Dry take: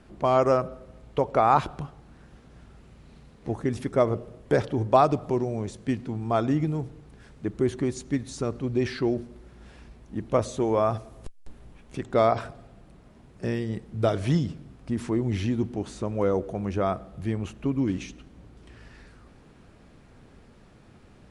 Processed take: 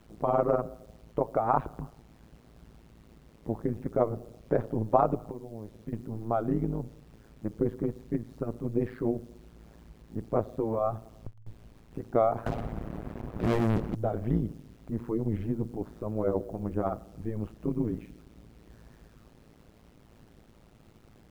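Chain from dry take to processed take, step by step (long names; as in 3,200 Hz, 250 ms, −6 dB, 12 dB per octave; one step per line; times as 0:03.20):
low-pass filter 1,100 Hz 12 dB per octave
0:05.28–0:05.93: downward compressor 16 to 1, threshold −33 dBFS, peak gain reduction 13 dB
0:12.46–0:13.95: leveller curve on the samples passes 5
bit reduction 10 bits
amplitude modulation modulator 110 Hz, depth 90%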